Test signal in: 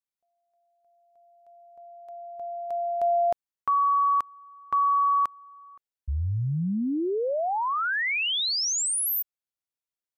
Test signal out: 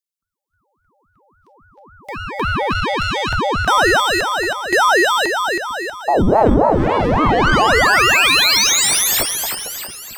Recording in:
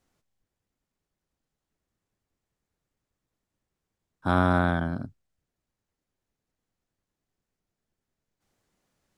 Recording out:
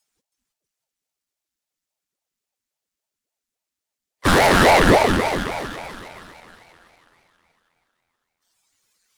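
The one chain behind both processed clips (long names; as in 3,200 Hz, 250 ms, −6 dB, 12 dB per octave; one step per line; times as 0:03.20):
noise reduction from a noise print of the clip's start 17 dB
first-order pre-emphasis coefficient 0.9
leveller curve on the samples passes 3
low shelf with overshoot 180 Hz +13 dB, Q 3
mid-hump overdrive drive 34 dB, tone 4,400 Hz, clips at −11 dBFS
in parallel at −5.5 dB: asymmetric clip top −22.5 dBFS
on the sum: echo with a time of its own for lows and highs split 400 Hz, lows 224 ms, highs 321 ms, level −5.5 dB
ring modulator whose carrier an LFO sweeps 440 Hz, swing 80%, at 3.6 Hz
level +3.5 dB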